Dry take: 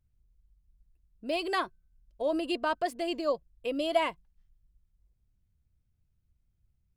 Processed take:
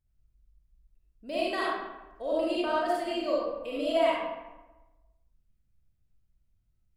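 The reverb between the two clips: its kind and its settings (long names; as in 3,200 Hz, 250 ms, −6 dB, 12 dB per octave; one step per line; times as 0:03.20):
comb and all-pass reverb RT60 1.1 s, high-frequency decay 0.6×, pre-delay 15 ms, DRR −6.5 dB
level −6.5 dB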